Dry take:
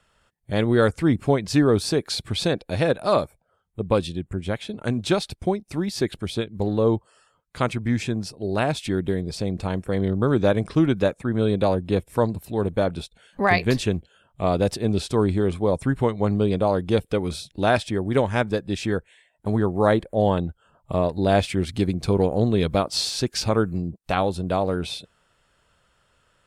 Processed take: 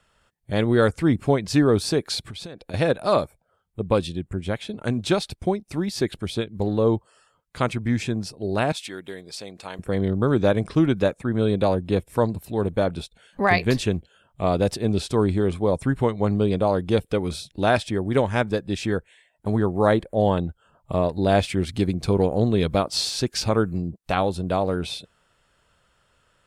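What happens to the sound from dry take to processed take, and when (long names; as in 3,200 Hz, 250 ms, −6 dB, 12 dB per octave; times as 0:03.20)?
0:02.19–0:02.74: downward compressor 16 to 1, threshold −32 dBFS
0:08.72–0:09.79: high-pass filter 1,300 Hz 6 dB per octave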